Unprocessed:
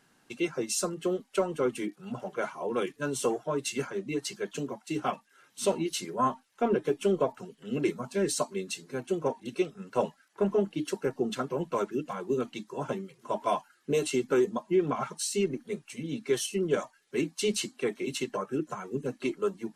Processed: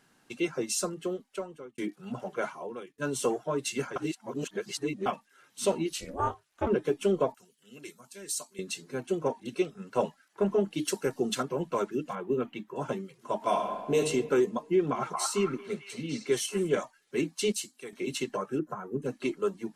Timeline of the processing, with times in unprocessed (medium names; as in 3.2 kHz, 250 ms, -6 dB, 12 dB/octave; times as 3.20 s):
0.73–1.78 s: fade out
2.51–2.98 s: fade out quadratic, to -19 dB
3.96–5.06 s: reverse
5.93–6.67 s: ring modulator 150 Hz
7.34–8.59 s: pre-emphasis filter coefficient 0.9
10.72–11.43 s: treble shelf 3.4 kHz +10.5 dB
12.15–12.76 s: high-order bell 6.5 kHz -14.5 dB
13.36–13.98 s: reverb throw, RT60 1.5 s, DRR 2 dB
14.66–16.79 s: repeats whose band climbs or falls 225 ms, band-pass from 1 kHz, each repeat 0.7 oct, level -0.5 dB
17.52–17.93 s: pre-emphasis filter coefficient 0.8
18.59–19.02 s: high-order bell 4.5 kHz -15 dB 2.5 oct